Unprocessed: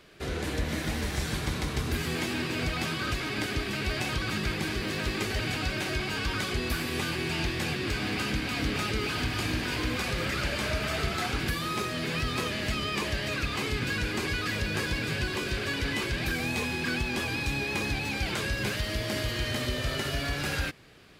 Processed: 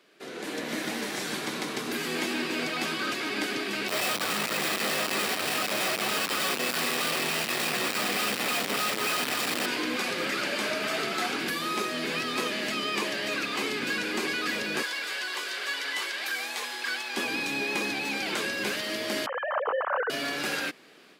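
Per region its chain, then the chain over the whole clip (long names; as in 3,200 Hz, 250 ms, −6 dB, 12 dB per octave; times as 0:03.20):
0:03.88–0:09.66: comb filter 1.6 ms, depth 63% + comparator with hysteresis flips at −43.5 dBFS + notch filter 6,400 Hz, Q 11
0:14.82–0:17.17: high-pass filter 790 Hz + notch filter 2,500 Hz, Q 14
0:19.26–0:20.10: three sine waves on the formant tracks + high shelf with overshoot 1,800 Hz −12.5 dB, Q 3
whole clip: automatic gain control gain up to 7.5 dB; high-pass filter 220 Hz 24 dB per octave; level −5.5 dB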